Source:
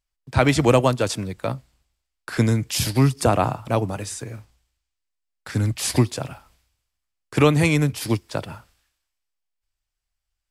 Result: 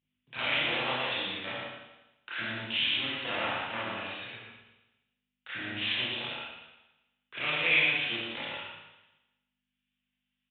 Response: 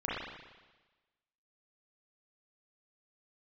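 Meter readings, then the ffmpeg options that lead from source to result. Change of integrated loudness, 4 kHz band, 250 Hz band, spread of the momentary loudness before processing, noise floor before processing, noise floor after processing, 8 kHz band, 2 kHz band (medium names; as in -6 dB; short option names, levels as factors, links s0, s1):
-8.5 dB, +1.5 dB, -20.0 dB, 14 LU, -81 dBFS, -85 dBFS, under -40 dB, +1.0 dB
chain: -filter_complex "[0:a]highpass=40,aeval=exprs='val(0)+0.00141*(sin(2*PI*50*n/s)+sin(2*PI*2*50*n/s)/2+sin(2*PI*3*50*n/s)/3+sin(2*PI*4*50*n/s)/4+sin(2*PI*5*50*n/s)/5)':c=same,lowshelf=f=340:g=8,alimiter=limit=0.398:level=0:latency=1,aresample=8000,aeval=exprs='clip(val(0),-1,0.0335)':c=same,aresample=44100,lowpass=f=2900:t=q:w=2.4,aderivative,aecho=1:1:116:0.631[s0];[1:a]atrim=start_sample=2205,asetrate=52920,aresample=44100[s1];[s0][s1]afir=irnorm=-1:irlink=0,volume=1.5"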